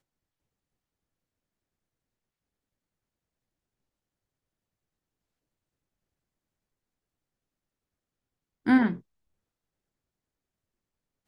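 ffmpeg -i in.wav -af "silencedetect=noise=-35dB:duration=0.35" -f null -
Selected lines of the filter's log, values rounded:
silence_start: 0.00
silence_end: 8.66 | silence_duration: 8.66
silence_start: 8.96
silence_end: 11.28 | silence_duration: 2.32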